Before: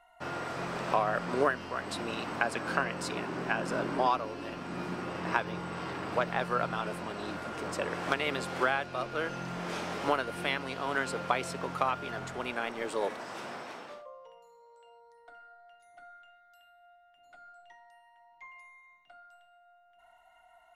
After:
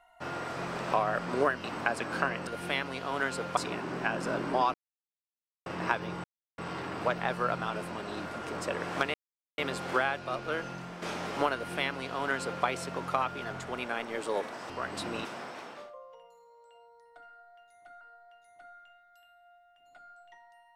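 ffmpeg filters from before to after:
ffmpeg -i in.wav -filter_complex "[0:a]asplit=12[link_01][link_02][link_03][link_04][link_05][link_06][link_07][link_08][link_09][link_10][link_11][link_12];[link_01]atrim=end=1.642[link_13];[link_02]atrim=start=2.188:end=3.022[link_14];[link_03]atrim=start=10.218:end=11.322[link_15];[link_04]atrim=start=3.018:end=4.19,asetpts=PTS-STARTPTS,afade=type=out:start_time=1.168:duration=0.004:curve=hsin[link_16];[link_05]atrim=start=4.19:end=5.11,asetpts=PTS-STARTPTS,volume=0[link_17];[link_06]atrim=start=5.11:end=5.69,asetpts=PTS-STARTPTS,afade=type=in:duration=0.004:curve=hsin,afade=type=out:start_time=0.576:duration=0.004:curve=hsin,apad=pad_dur=0.34[link_18];[link_07]atrim=start=5.69:end=8.25,asetpts=PTS-STARTPTS,afade=type=in:duration=0.004:curve=hsin,afade=type=out:start_time=2.556:duration=0.004:curve=hsin,apad=pad_dur=0.44[link_19];[link_08]atrim=start=8.25:end=9.69,asetpts=PTS-STARTPTS,afade=type=in:duration=0.004:curve=hsin,afade=type=out:start_time=0.97:duration=0.47:silence=0.398107[link_20];[link_09]atrim=start=9.69:end=13.372,asetpts=PTS-STARTPTS,afade=type=in:duration=0.004:curve=hsin:silence=0.398107[link_21];[link_10]atrim=start=1.638:end=2.192[link_22];[link_11]atrim=start=13.368:end=16.132[link_23];[link_12]atrim=start=15.388[link_24];[link_13][link_14]acrossfade=duration=0.004:curve1=hsin:curve2=hsin[link_25];[link_25][link_15]acrossfade=duration=0.004:curve1=hsin:curve2=hsin[link_26];[link_16][link_17][link_18][link_19][link_20][link_21]concat=n=6:v=0:a=1[link_27];[link_26][link_27]acrossfade=duration=0.004:curve1=hsin:curve2=hsin[link_28];[link_28][link_22]acrossfade=duration=0.004:curve1=hsin:curve2=hsin[link_29];[link_29][link_23]acrossfade=duration=0.004:curve1=hsin:curve2=hsin[link_30];[link_30][link_24]acrossfade=duration=0.004:curve1=hsin:curve2=hsin" out.wav

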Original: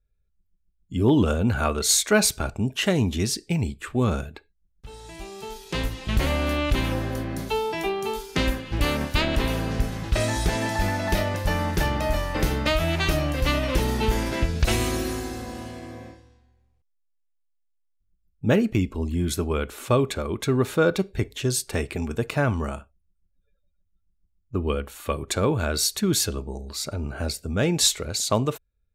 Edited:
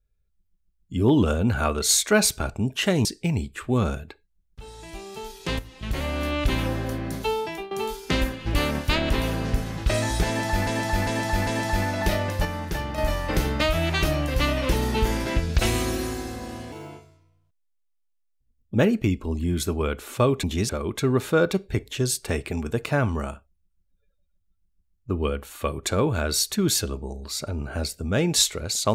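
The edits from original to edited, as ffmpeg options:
ffmpeg -i in.wav -filter_complex "[0:a]asplit=13[link_01][link_02][link_03][link_04][link_05][link_06][link_07][link_08][link_09][link_10][link_11][link_12][link_13];[link_01]atrim=end=3.052[link_14];[link_02]atrim=start=3.308:end=5.85,asetpts=PTS-STARTPTS,afade=type=out:start_time=2.538:duration=0.004:curve=hsin:silence=0.237137[link_15];[link_03]atrim=start=5.85:end=7.97,asetpts=PTS-STARTPTS,afade=type=in:duration=0.94:silence=0.237137,afade=type=out:start_time=1.79:duration=0.33:silence=0.149624[link_16];[link_04]atrim=start=7.97:end=10.932,asetpts=PTS-STARTPTS,afade=type=in:duration=0.004:curve=hsin:silence=0.149624[link_17];[link_05]atrim=start=10.528:end=10.932[link_18];[link_06]atrim=start=10.528:end=10.932[link_19];[link_07]atrim=start=10.528:end=11.512[link_20];[link_08]atrim=start=11.508:end=12.042,asetpts=PTS-STARTPTS,volume=-5.5dB[link_21];[link_09]atrim=start=12.038:end=15.784[link_22];[link_10]atrim=start=15.78:end=18.45,asetpts=PTS-STARTPTS,asetrate=58212,aresample=44100,atrim=end_sample=89202,asetpts=PTS-STARTPTS[link_23];[link_11]atrim=start=18.446:end=20.142[link_24];[link_12]atrim=start=3.048:end=3.312[link_25];[link_13]atrim=start=20.138[link_26];[link_15][link_16][link_17]concat=n=3:v=0:a=1[link_27];[link_14][link_27]acrossfade=duration=0.004:curve1=hsin:curve2=hsin[link_28];[link_28][link_18]acrossfade=duration=0.004:curve1=hsin:curve2=hsin[link_29];[link_29][link_19]acrossfade=duration=0.004:curve1=hsin:curve2=hsin[link_30];[link_30][link_20]acrossfade=duration=0.004:curve1=hsin:curve2=hsin[link_31];[link_31][link_21]acrossfade=duration=0.004:curve1=hsin:curve2=hsin[link_32];[link_32][link_22]acrossfade=duration=0.004:curve1=hsin:curve2=hsin[link_33];[link_33][link_23]acrossfade=duration=0.004:curve1=hsin:curve2=hsin[link_34];[link_34][link_24]acrossfade=duration=0.004:curve1=hsin:curve2=hsin[link_35];[link_35][link_25]acrossfade=duration=0.004:curve1=hsin:curve2=hsin[link_36];[link_36][link_26]acrossfade=duration=0.004:curve1=hsin:curve2=hsin" out.wav

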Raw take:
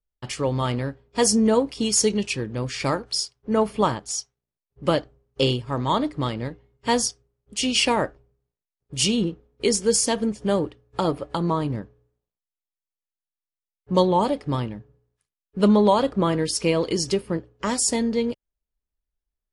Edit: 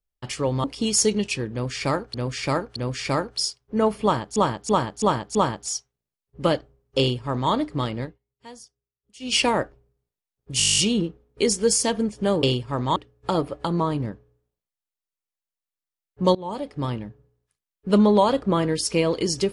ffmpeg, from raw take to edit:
ffmpeg -i in.wav -filter_complex "[0:a]asplit=23[link_01][link_02][link_03][link_04][link_05][link_06][link_07][link_08][link_09][link_10][link_11][link_12][link_13][link_14][link_15][link_16][link_17][link_18][link_19][link_20][link_21][link_22][link_23];[link_01]atrim=end=0.642[link_24];[link_02]atrim=start=1.628:end=3.132[link_25];[link_03]atrim=start=2.508:end=3.132[link_26];[link_04]atrim=start=2.508:end=4.112[link_27];[link_05]atrim=start=3.778:end=4.112[link_28];[link_06]atrim=start=3.778:end=4.112[link_29];[link_07]atrim=start=3.778:end=4.112[link_30];[link_08]atrim=start=3.778:end=6.62,asetpts=PTS-STARTPTS,afade=type=out:start_time=2.682:duration=0.16:silence=0.0841395[link_31];[link_09]atrim=start=6.62:end=7.63,asetpts=PTS-STARTPTS,volume=-21.5dB[link_32];[link_10]atrim=start=7.63:end=9.032,asetpts=PTS-STARTPTS,afade=type=in:duration=0.16:silence=0.0841395[link_33];[link_11]atrim=start=9.008:end=9.032[link_34];[link_12]atrim=start=9.008:end=9.032[link_35];[link_13]atrim=start=9.008:end=9.032[link_36];[link_14]atrim=start=9.008:end=9.032[link_37];[link_15]atrim=start=9.008:end=9.032[link_38];[link_16]atrim=start=9.008:end=9.032[link_39];[link_17]atrim=start=9.008:end=9.032[link_40];[link_18]atrim=start=9.008:end=9.032[link_41];[link_19]atrim=start=9.008:end=9.032[link_42];[link_20]atrim=start=9.008:end=10.662[link_43];[link_21]atrim=start=5.418:end=5.952[link_44];[link_22]atrim=start=10.658:end=14.05,asetpts=PTS-STARTPTS,afade=type=out:start_time=3.388:duration=0.004:curve=hsin:silence=0.0841395[link_45];[link_23]atrim=start=14.05,asetpts=PTS-STARTPTS,afade=type=in:duration=0.64:silence=0.0841395[link_46];[link_24][link_25]acrossfade=duration=0.004:curve1=hsin:curve2=hsin[link_47];[link_47][link_26]acrossfade=duration=0.004:curve1=hsin:curve2=hsin[link_48];[link_48][link_27]acrossfade=duration=0.004:curve1=hsin:curve2=hsin[link_49];[link_49][link_28]acrossfade=duration=0.004:curve1=hsin:curve2=hsin[link_50];[link_50][link_29]acrossfade=duration=0.004:curve1=hsin:curve2=hsin[link_51];[link_51][link_30]acrossfade=duration=0.004:curve1=hsin:curve2=hsin[link_52];[link_31][link_32][link_33]concat=n=3:v=0:a=1[link_53];[link_52][link_53]acrossfade=duration=0.004:curve1=hsin:curve2=hsin[link_54];[link_54][link_34]acrossfade=duration=0.004:curve1=hsin:curve2=hsin[link_55];[link_55][link_35]acrossfade=duration=0.004:curve1=hsin:curve2=hsin[link_56];[link_56][link_36]acrossfade=duration=0.004:curve1=hsin:curve2=hsin[link_57];[link_57][link_37]acrossfade=duration=0.004:curve1=hsin:curve2=hsin[link_58];[link_58][link_38]acrossfade=duration=0.004:curve1=hsin:curve2=hsin[link_59];[link_59][link_39]acrossfade=duration=0.004:curve1=hsin:curve2=hsin[link_60];[link_60][link_40]acrossfade=duration=0.004:curve1=hsin:curve2=hsin[link_61];[link_61][link_41]acrossfade=duration=0.004:curve1=hsin:curve2=hsin[link_62];[link_62][link_42]acrossfade=duration=0.004:curve1=hsin:curve2=hsin[link_63];[link_63][link_43]acrossfade=duration=0.004:curve1=hsin:curve2=hsin[link_64];[link_64][link_44]acrossfade=duration=0.004:curve1=hsin:curve2=hsin[link_65];[link_45][link_46]concat=n=2:v=0:a=1[link_66];[link_65][link_66]acrossfade=duration=0.004:curve1=hsin:curve2=hsin" out.wav

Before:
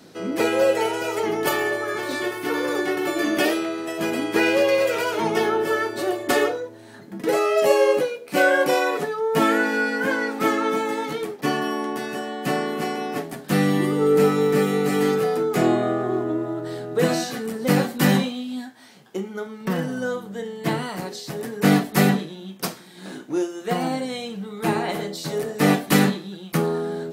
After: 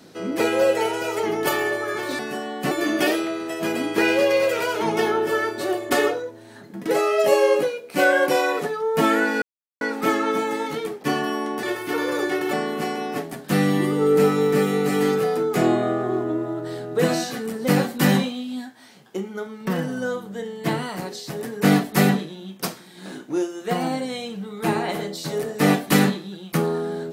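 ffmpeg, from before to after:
ffmpeg -i in.wav -filter_complex "[0:a]asplit=7[link_01][link_02][link_03][link_04][link_05][link_06][link_07];[link_01]atrim=end=2.192[link_08];[link_02]atrim=start=12.008:end=12.532[link_09];[link_03]atrim=start=3.088:end=9.8,asetpts=PTS-STARTPTS,afade=type=out:start_time=6.708:duration=0.004:curve=hsin[link_10];[link_04]atrim=start=9.8:end=10.19,asetpts=PTS-STARTPTS,volume=0[link_11];[link_05]atrim=start=10.19:end=12.012,asetpts=PTS-STARTPTS,afade=type=in:duration=0.004:curve=hsin[link_12];[link_06]atrim=start=2.188:end=3.092[link_13];[link_07]atrim=start=12.528[link_14];[link_08][link_09]acrossfade=duration=0.004:curve1=hsin:curve2=hsin[link_15];[link_10][link_11][link_12]concat=n=3:v=0:a=1[link_16];[link_15][link_16]acrossfade=duration=0.004:curve1=hsin:curve2=hsin[link_17];[link_17][link_13]acrossfade=duration=0.004:curve1=hsin:curve2=hsin[link_18];[link_18][link_14]acrossfade=duration=0.004:curve1=hsin:curve2=hsin" out.wav

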